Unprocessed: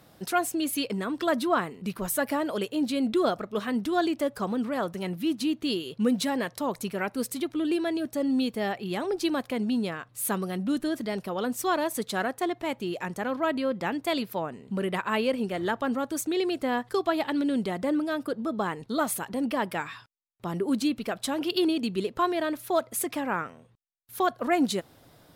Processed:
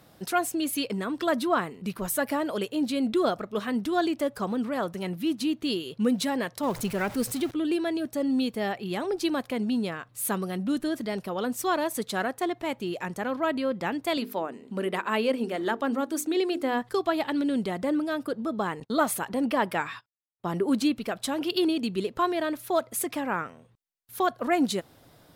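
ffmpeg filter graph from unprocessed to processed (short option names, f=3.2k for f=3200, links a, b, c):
-filter_complex "[0:a]asettb=1/sr,asplit=3[a][b][c];[a]atrim=end=6.634[d];[b]atrim=start=6.63:end=7.51,asetpts=PTS-STARTPTS,afade=t=in:d=0.004:c=qsin,afade=t=out:st=0.876:d=0.004:c=qsin,aeval=exprs='val(0)+0.5*0.0141*sgn(val(0))':c=same,lowshelf=f=140:g=6[e];[c]atrim=start=7.506[f];[d][e]acrossfade=d=0.004:c1=hsin:c2=qsin[g];[g][f]acrossfade=d=0.004:c1=qsin:c2=hsin,asettb=1/sr,asplit=3[h][i][j];[h]atrim=end=14.174[k];[i]atrim=start=14.17:end=16.82,asetpts=PTS-STARTPTS,afade=t=in:d=0.004:c=qsin,afade=t=out:st=2.646:d=0.004:c=qsin,lowshelf=f=180:t=q:w=1.5:g=-9.5,bandreject=f=50:t=h:w=6,bandreject=f=100:t=h:w=6,bandreject=f=150:t=h:w=6,bandreject=f=200:t=h:w=6,bandreject=f=250:t=h:w=6,bandreject=f=300:t=h:w=6,bandreject=f=350:t=h:w=6,bandreject=f=400:t=h:w=6,bandreject=f=450:t=h:w=6[l];[j]atrim=start=16.816[m];[k][l]acrossfade=d=0.004:c1=hsin:c2=qsin[n];[n][m]acrossfade=d=0.004:c1=qsin:c2=hsin,asettb=1/sr,asplit=3[o][p][q];[o]atrim=end=18.804[r];[p]atrim=start=18.8:end=20.92,asetpts=PTS-STARTPTS,afade=t=in:d=0.004:c=qsin,afade=t=out:st=2.116:d=0.004:c=qsin,equalizer=f=970:w=0.33:g=3.5,agate=range=-24dB:threshold=-44dB:ratio=16:release=100:detection=peak[s];[q]atrim=start=20.916[t];[r][s]acrossfade=d=0.004:c1=hsin:c2=qsin[u];[u][t]acrossfade=d=0.004:c1=qsin:c2=hsin"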